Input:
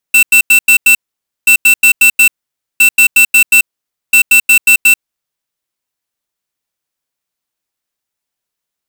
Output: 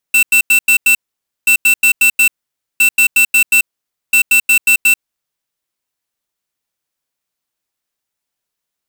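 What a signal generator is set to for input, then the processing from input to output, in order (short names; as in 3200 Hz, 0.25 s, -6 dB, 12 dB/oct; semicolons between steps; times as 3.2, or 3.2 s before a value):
beep pattern square 2680 Hz, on 0.09 s, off 0.09 s, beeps 5, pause 0.52 s, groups 4, -5.5 dBFS
limiter -9 dBFS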